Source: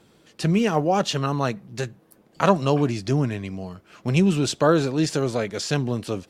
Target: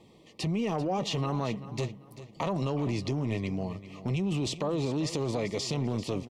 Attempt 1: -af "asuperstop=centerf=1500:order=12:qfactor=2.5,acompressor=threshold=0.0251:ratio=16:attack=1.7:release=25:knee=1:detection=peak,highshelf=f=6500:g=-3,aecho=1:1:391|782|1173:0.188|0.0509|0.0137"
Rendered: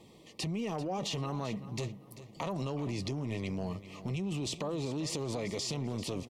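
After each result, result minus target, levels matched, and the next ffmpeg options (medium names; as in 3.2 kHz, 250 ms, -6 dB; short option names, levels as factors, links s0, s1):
compression: peak gain reduction +5.5 dB; 8 kHz band +4.5 dB
-af "asuperstop=centerf=1500:order=12:qfactor=2.5,acompressor=threshold=0.0501:ratio=16:attack=1.7:release=25:knee=1:detection=peak,highshelf=f=6500:g=-3,aecho=1:1:391|782|1173:0.188|0.0509|0.0137"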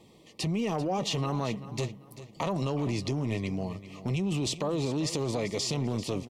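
8 kHz band +4.0 dB
-af "asuperstop=centerf=1500:order=12:qfactor=2.5,acompressor=threshold=0.0501:ratio=16:attack=1.7:release=25:knee=1:detection=peak,highshelf=f=6500:g=-11,aecho=1:1:391|782|1173:0.188|0.0509|0.0137"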